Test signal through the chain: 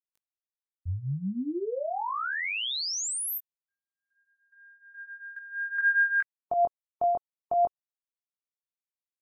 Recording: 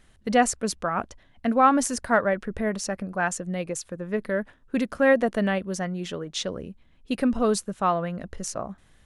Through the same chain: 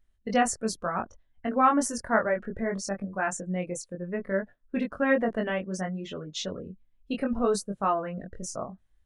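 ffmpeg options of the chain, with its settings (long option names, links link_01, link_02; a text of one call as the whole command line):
ffmpeg -i in.wav -af "afftdn=noise_reduction=19:noise_floor=-40,flanger=delay=20:depth=2.7:speed=0.64" out.wav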